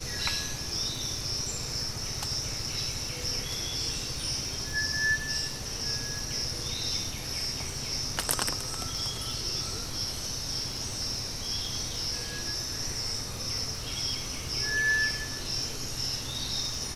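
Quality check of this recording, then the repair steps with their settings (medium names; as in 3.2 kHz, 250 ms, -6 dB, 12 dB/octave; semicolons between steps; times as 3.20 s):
crackle 47 per s -38 dBFS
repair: de-click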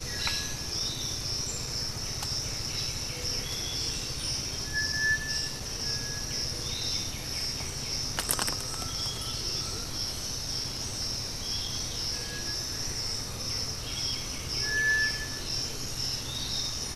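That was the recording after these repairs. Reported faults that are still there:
nothing left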